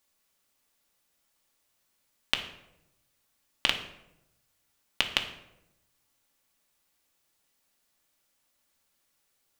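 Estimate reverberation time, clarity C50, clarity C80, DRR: 0.90 s, 9.5 dB, 12.0 dB, 4.0 dB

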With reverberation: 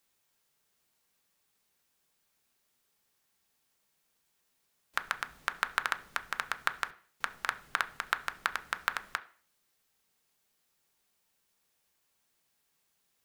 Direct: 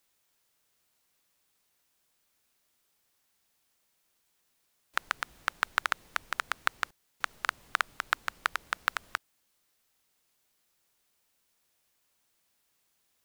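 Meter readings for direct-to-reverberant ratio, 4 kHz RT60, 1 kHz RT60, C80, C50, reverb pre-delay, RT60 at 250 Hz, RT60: 8.0 dB, 0.45 s, 0.45 s, 21.5 dB, 17.5 dB, 3 ms, 0.45 s, 0.45 s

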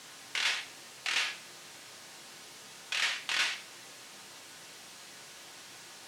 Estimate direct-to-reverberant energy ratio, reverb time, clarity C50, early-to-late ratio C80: 2.5 dB, 0.55 s, 11.0 dB, 15.5 dB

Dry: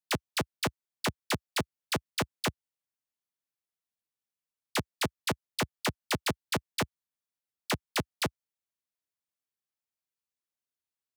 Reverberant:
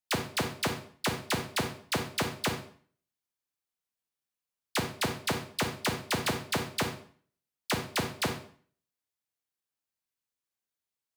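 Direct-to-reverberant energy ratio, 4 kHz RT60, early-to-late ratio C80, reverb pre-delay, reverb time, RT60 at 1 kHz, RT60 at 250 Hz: 4.5 dB, 0.45 s, 11.5 dB, 29 ms, 0.50 s, 0.50 s, 0.50 s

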